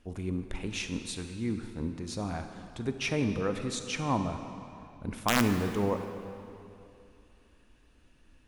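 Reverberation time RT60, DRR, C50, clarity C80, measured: 2.8 s, 7.0 dB, 7.5 dB, 8.5 dB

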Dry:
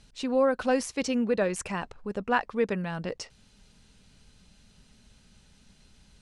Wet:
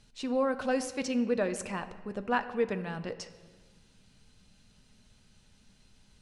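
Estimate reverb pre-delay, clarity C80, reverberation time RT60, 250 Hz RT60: 7 ms, 14.5 dB, 1.5 s, 1.8 s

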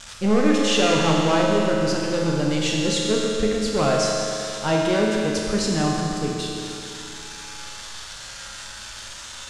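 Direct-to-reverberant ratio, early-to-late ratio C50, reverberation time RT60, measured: -3.0 dB, -1.0 dB, 2.9 s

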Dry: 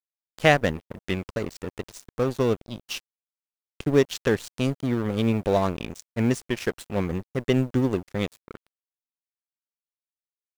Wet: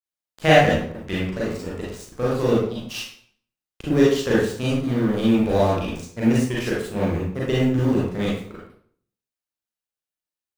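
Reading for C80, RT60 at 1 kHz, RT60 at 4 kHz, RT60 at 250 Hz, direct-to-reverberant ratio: 4.5 dB, 0.55 s, 0.45 s, 0.60 s, -7.0 dB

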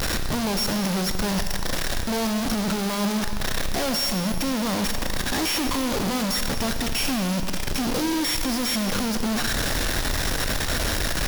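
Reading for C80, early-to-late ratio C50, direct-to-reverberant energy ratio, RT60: 8.0 dB, 7.0 dB, 6.0 dB, 2.1 s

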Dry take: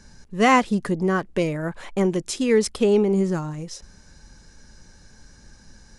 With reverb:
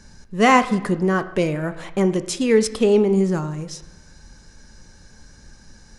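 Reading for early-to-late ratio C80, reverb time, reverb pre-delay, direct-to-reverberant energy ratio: 16.0 dB, 1.0 s, 7 ms, 11.0 dB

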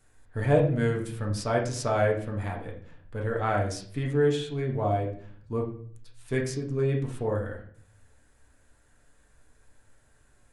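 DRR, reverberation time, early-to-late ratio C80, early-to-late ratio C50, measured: -1.5 dB, 0.50 s, 12.0 dB, 7.5 dB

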